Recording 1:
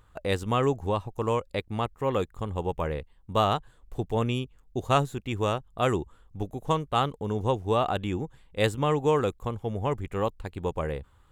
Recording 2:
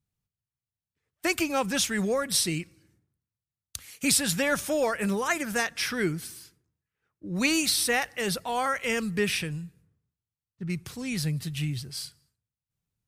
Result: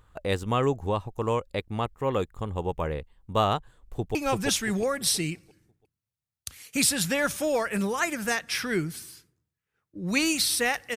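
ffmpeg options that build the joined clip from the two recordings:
ffmpeg -i cue0.wav -i cue1.wav -filter_complex "[0:a]apad=whole_dur=10.96,atrim=end=10.96,atrim=end=4.152[link_01];[1:a]atrim=start=1.428:end=8.24[link_02];[link_01][link_02]acrossfade=duration=0.004:curve1=hsin:curve2=hsin,asplit=2[link_03][link_04];[link_04]afade=type=in:start_time=3.88:duration=0.01,afade=type=out:start_time=4.15:duration=0.01,aecho=0:1:340|680|1020|1360|1700:0.794328|0.278015|0.0973052|0.0340568|0.0119199[link_05];[link_03][link_05]amix=inputs=2:normalize=0" out.wav

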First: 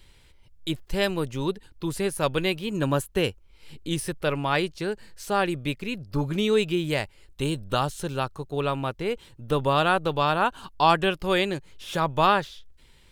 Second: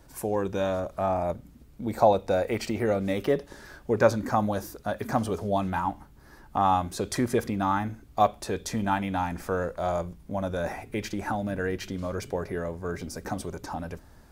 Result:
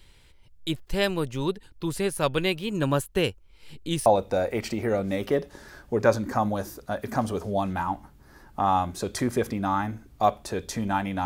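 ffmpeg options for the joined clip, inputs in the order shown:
ffmpeg -i cue0.wav -i cue1.wav -filter_complex "[0:a]apad=whole_dur=11.25,atrim=end=11.25,atrim=end=4.062[link_01];[1:a]atrim=start=2.028:end=9.22[link_02];[link_01][link_02]acrossfade=duration=0.004:curve1=hsin:curve2=hsin" out.wav

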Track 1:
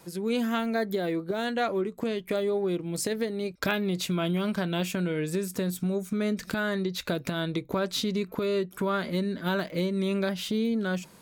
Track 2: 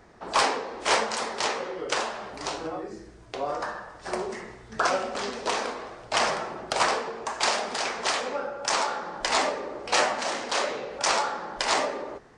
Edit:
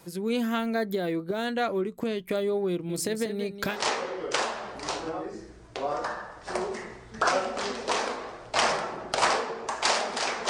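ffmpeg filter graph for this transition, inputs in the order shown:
ffmpeg -i cue0.wav -i cue1.wav -filter_complex "[0:a]asettb=1/sr,asplit=3[link_01][link_02][link_03];[link_01]atrim=end=2.704[link_04];[link_02]atrim=start=2.7:end=3.8,asetpts=PTS-STARTPTS,afade=type=in:duration=0.004:curve=qsin,afade=type=out:start_time=1.096:duration=0.004:curve=qsin,aecho=1:1:190:0.316,atrim=end_sample=48510[link_05];[link_03]atrim=start=3.796[link_06];[link_04][link_05]acrossfade=duration=0.004:curve1=hsin:curve2=qsin[link_07];[link_07][link_06]acrossfade=duration=0.004:curve1=qsin:curve2=hsin,apad=whole_dur=10.49,atrim=end=10.49,atrim=end=3.8,asetpts=PTS-STARTPTS[link_08];[1:a]atrim=start=1.22:end=8.07,asetpts=PTS-STARTPTS[link_09];[link_08][link_09]acrossfade=duration=0.16:curve1=tri:curve2=tri" out.wav

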